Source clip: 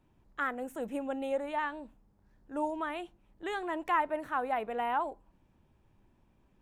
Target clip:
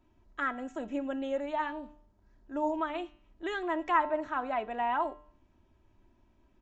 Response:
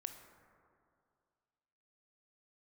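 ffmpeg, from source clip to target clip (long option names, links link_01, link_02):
-af "aecho=1:1:3.1:0.56,aresample=16000,aresample=44100,bandreject=frequency=149.5:width_type=h:width=4,bandreject=frequency=299:width_type=h:width=4,bandreject=frequency=448.5:width_type=h:width=4,bandreject=frequency=598:width_type=h:width=4,bandreject=frequency=747.5:width_type=h:width=4,bandreject=frequency=897:width_type=h:width=4,bandreject=frequency=1046.5:width_type=h:width=4,bandreject=frequency=1196:width_type=h:width=4,bandreject=frequency=1345.5:width_type=h:width=4,bandreject=frequency=1495:width_type=h:width=4,bandreject=frequency=1644.5:width_type=h:width=4,bandreject=frequency=1794:width_type=h:width=4,bandreject=frequency=1943.5:width_type=h:width=4,bandreject=frequency=2093:width_type=h:width=4,bandreject=frequency=2242.5:width_type=h:width=4,bandreject=frequency=2392:width_type=h:width=4,bandreject=frequency=2541.5:width_type=h:width=4,bandreject=frequency=2691:width_type=h:width=4,bandreject=frequency=2840.5:width_type=h:width=4,bandreject=frequency=2990:width_type=h:width=4,bandreject=frequency=3139.5:width_type=h:width=4,bandreject=frequency=3289:width_type=h:width=4,bandreject=frequency=3438.5:width_type=h:width=4,bandreject=frequency=3588:width_type=h:width=4,bandreject=frequency=3737.5:width_type=h:width=4,bandreject=frequency=3887:width_type=h:width=4,bandreject=frequency=4036.5:width_type=h:width=4,bandreject=frequency=4186:width_type=h:width=4,bandreject=frequency=4335.5:width_type=h:width=4,bandreject=frequency=4485:width_type=h:width=4,bandreject=frequency=4634.5:width_type=h:width=4,bandreject=frequency=4784:width_type=h:width=4,bandreject=frequency=4933.5:width_type=h:width=4"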